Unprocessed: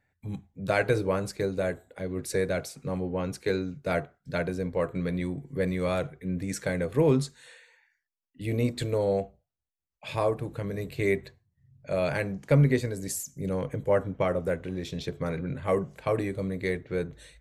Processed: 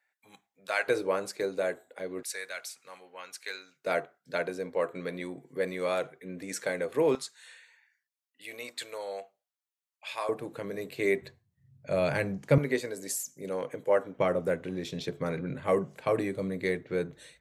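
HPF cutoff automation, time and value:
930 Hz
from 0.88 s 360 Hz
from 2.23 s 1400 Hz
from 3.84 s 360 Hz
from 7.15 s 1000 Hz
from 10.29 s 270 Hz
from 11.22 s 94 Hz
from 12.58 s 360 Hz
from 14.17 s 160 Hz

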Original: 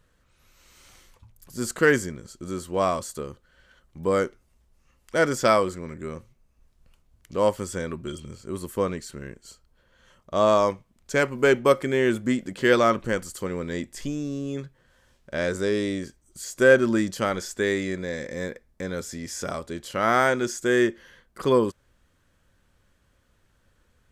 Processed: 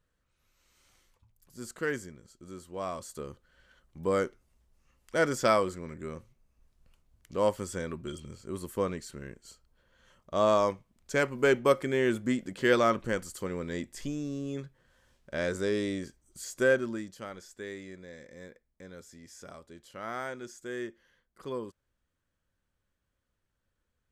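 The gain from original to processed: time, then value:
2.82 s -13 dB
3.29 s -5 dB
16.52 s -5 dB
17.11 s -16.5 dB

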